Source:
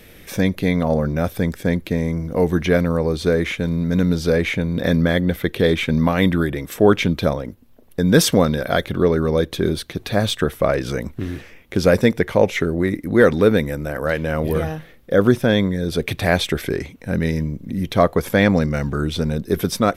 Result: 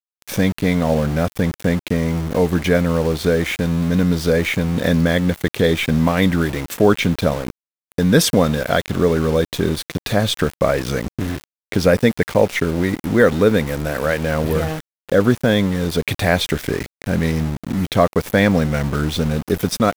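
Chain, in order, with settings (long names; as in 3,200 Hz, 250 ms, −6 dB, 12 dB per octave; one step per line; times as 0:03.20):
dynamic equaliser 360 Hz, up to −5 dB, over −37 dBFS, Q 7.4
in parallel at +1.5 dB: downward compressor 10 to 1, threshold −26 dBFS, peak gain reduction 18 dB
on the sum: centre clipping without the shift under −25 dBFS
level −1 dB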